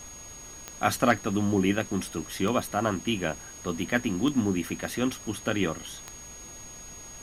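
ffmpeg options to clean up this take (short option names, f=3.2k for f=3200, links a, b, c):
-af "adeclick=t=4,bandreject=f=59.8:t=h:w=4,bandreject=f=119.6:t=h:w=4,bandreject=f=179.4:t=h:w=4,bandreject=f=239.2:t=h:w=4,bandreject=f=6.6k:w=30,afftdn=nr=29:nf=-44"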